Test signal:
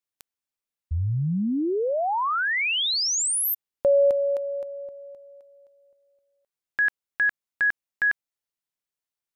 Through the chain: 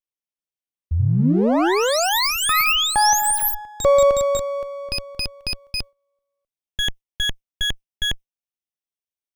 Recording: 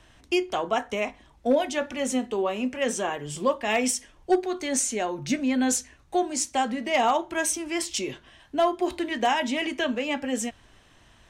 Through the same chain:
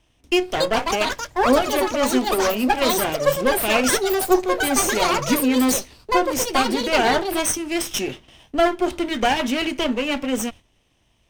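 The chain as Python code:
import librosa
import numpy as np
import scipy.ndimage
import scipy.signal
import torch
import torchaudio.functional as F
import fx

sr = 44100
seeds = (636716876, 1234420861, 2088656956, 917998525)

y = fx.lower_of_two(x, sr, delay_ms=0.34)
y = fx.echo_pitch(y, sr, ms=389, semitones=7, count=2, db_per_echo=-3.0)
y = fx.gate_hold(y, sr, open_db=-43.0, close_db=-53.0, hold_ms=18.0, range_db=-12, attack_ms=2.6, release_ms=61.0)
y = F.gain(torch.from_numpy(y), 5.5).numpy()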